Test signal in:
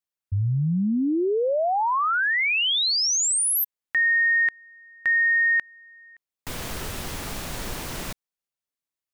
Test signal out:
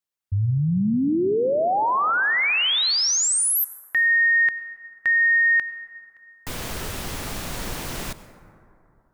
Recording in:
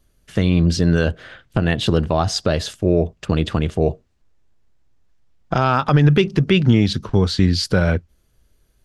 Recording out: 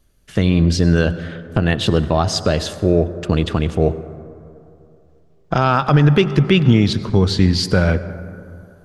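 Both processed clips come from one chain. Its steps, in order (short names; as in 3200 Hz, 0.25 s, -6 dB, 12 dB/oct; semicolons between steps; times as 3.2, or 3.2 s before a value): plate-style reverb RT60 2.8 s, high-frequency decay 0.3×, pre-delay 75 ms, DRR 13.5 dB; gain +1.5 dB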